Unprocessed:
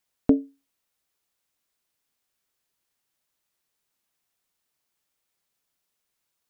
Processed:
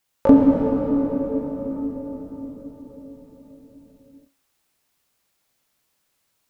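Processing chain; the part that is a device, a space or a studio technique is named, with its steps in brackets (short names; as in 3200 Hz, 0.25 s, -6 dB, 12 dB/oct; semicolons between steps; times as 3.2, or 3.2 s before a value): shimmer-style reverb (harmoniser +12 st -7 dB; reverb RT60 5.2 s, pre-delay 3 ms, DRR -3.5 dB); gain +4 dB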